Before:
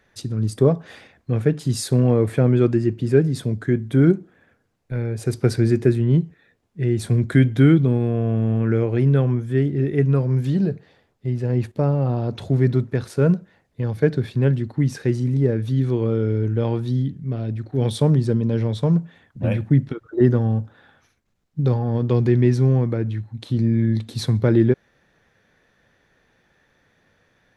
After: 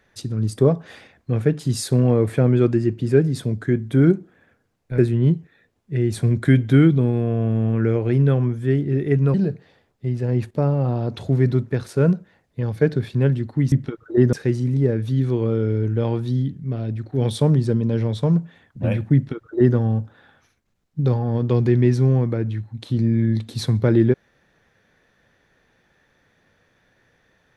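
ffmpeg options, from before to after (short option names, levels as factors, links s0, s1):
-filter_complex "[0:a]asplit=5[s0][s1][s2][s3][s4];[s0]atrim=end=4.982[s5];[s1]atrim=start=5.848:end=10.212[s6];[s2]atrim=start=10.548:end=14.932[s7];[s3]atrim=start=19.748:end=20.362[s8];[s4]atrim=start=14.928[s9];[s5][s6]acrossfade=d=0.004:c1=hsin:c2=hsin[s10];[s10][s7]acrossfade=d=0.004:c1=hsin:c2=hsin[s11];[s11][s8]acrossfade=d=0.004:c1=hsin:c2=hsin[s12];[s12][s9]acrossfade=d=0.004:c1=hsin:c2=hsin"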